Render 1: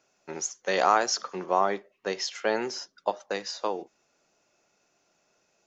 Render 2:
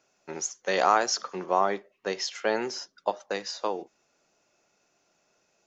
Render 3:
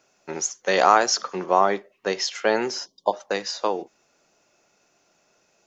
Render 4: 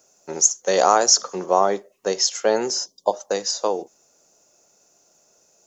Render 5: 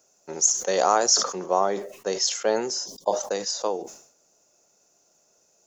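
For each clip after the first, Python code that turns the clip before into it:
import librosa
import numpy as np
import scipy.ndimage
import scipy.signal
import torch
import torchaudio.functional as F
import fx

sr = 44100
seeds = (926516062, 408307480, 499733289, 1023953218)

y1 = x
y2 = fx.spec_erase(y1, sr, start_s=2.86, length_s=0.27, low_hz=1100.0, high_hz=2900.0)
y2 = F.gain(torch.from_numpy(y2), 5.5).numpy()
y3 = fx.curve_eq(y2, sr, hz=(340.0, 490.0, 2300.0, 4300.0, 6800.0), db=(0, 4, -7, 1, 12))
y4 = fx.sustainer(y3, sr, db_per_s=94.0)
y4 = F.gain(torch.from_numpy(y4), -4.5).numpy()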